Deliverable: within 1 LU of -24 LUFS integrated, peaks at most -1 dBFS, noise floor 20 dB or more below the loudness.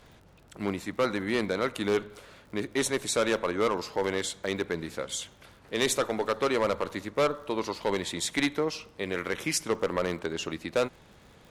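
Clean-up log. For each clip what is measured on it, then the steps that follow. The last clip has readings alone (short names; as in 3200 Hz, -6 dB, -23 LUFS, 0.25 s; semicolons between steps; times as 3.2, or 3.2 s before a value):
ticks 62/s; loudness -30.0 LUFS; peak -11.5 dBFS; loudness target -24.0 LUFS
-> de-click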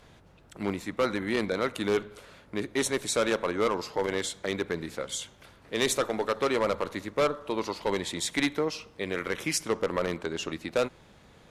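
ticks 0.17/s; loudness -30.0 LUFS; peak -11.5 dBFS; loudness target -24.0 LUFS
-> gain +6 dB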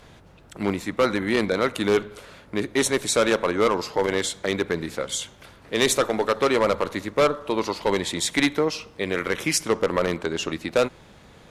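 loudness -24.0 LUFS; peak -5.5 dBFS; noise floor -50 dBFS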